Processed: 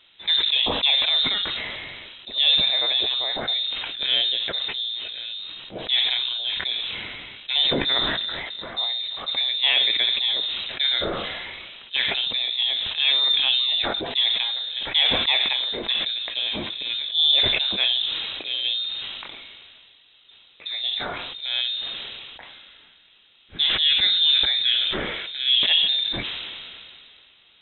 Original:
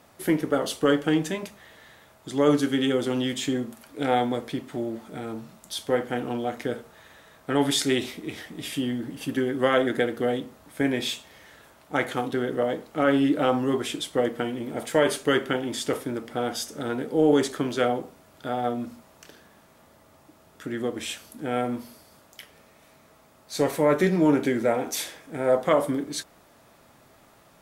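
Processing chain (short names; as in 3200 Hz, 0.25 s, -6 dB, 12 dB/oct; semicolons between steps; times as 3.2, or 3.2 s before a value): inverted band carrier 3900 Hz; sustainer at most 24 dB/s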